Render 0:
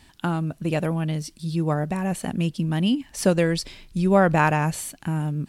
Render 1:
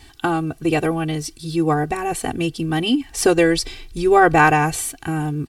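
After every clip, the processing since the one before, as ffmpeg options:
-af "aecho=1:1:2.6:0.95,volume=1.68"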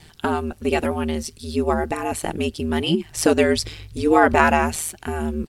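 -af "aeval=exprs='val(0)*sin(2*PI*78*n/s)':c=same,volume=1.12"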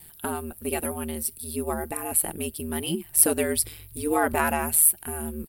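-af "aexciter=amount=15.9:drive=7:freq=9400,volume=0.376"

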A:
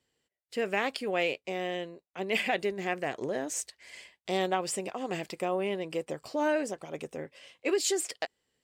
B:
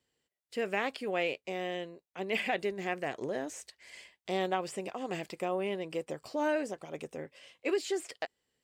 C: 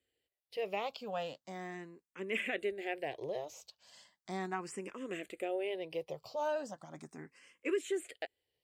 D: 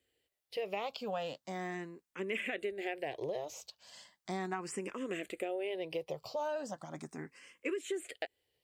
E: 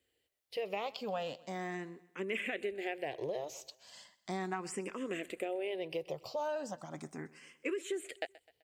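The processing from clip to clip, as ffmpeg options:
-filter_complex "[0:a]acrossover=split=3300[s0][s1];[s1]acompressor=threshold=0.00891:ratio=4:attack=1:release=60[s2];[s0][s2]amix=inputs=2:normalize=0,volume=0.75"
-filter_complex "[0:a]asplit=2[s0][s1];[s1]afreqshift=0.37[s2];[s0][s2]amix=inputs=2:normalize=1,volume=0.794"
-af "acompressor=threshold=0.0126:ratio=6,volume=1.68"
-af "aecho=1:1:128|256|384:0.0944|0.0434|0.02"

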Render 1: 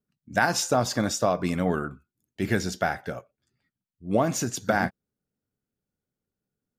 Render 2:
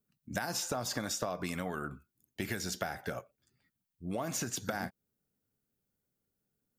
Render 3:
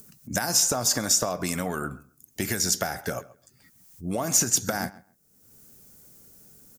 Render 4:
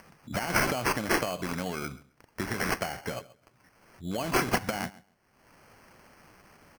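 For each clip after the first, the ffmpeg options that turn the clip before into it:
-filter_complex "[0:a]acompressor=threshold=0.0447:ratio=3,highshelf=f=11000:g=11.5,acrossover=split=780|3800[s0][s1][s2];[s0]acompressor=threshold=0.0158:ratio=4[s3];[s1]acompressor=threshold=0.0126:ratio=4[s4];[s2]acompressor=threshold=0.0141:ratio=4[s5];[s3][s4][s5]amix=inputs=3:normalize=0"
-filter_complex "[0:a]acompressor=mode=upward:threshold=0.00355:ratio=2.5,highshelf=f=4700:t=q:w=1.5:g=7.5,asplit=2[s0][s1];[s1]adelay=133,lowpass=f=2800:p=1,volume=0.112,asplit=2[s2][s3];[s3]adelay=133,lowpass=f=2800:p=1,volume=0.18[s4];[s0][s2][s4]amix=inputs=3:normalize=0,volume=2.37"
-af "acrusher=samples=12:mix=1:aa=0.000001,volume=0.631"

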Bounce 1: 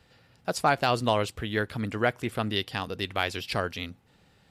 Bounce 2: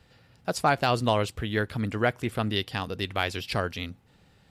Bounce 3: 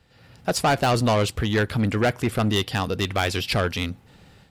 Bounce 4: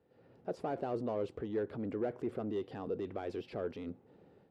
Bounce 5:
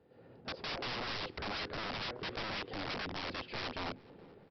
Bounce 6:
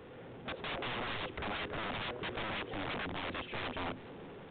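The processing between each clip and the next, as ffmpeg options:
-af "lowshelf=f=170:g=4.5"
-af "asoftclip=type=tanh:threshold=0.0631,dynaudnorm=f=130:g=3:m=3.35,volume=0.841"
-af "alimiter=limit=0.0668:level=0:latency=1:release=27,bandpass=f=400:t=q:w=1.9:csg=0,volume=0.891"
-filter_complex "[0:a]aresample=11025,aeval=exprs='(mod(89.1*val(0)+1,2)-1)/89.1':c=same,aresample=44100,asplit=2[s0][s1];[s1]adelay=423,lowpass=f=2600:p=1,volume=0.0668,asplit=2[s2][s3];[s3]adelay=423,lowpass=f=2600:p=1,volume=0.52,asplit=2[s4][s5];[s5]adelay=423,lowpass=f=2600:p=1,volume=0.52[s6];[s0][s2][s4][s6]amix=inputs=4:normalize=0,volume=1.78"
-af "aeval=exprs='val(0)+0.5*0.00447*sgn(val(0))':c=same,aresample=8000,aresample=44100"

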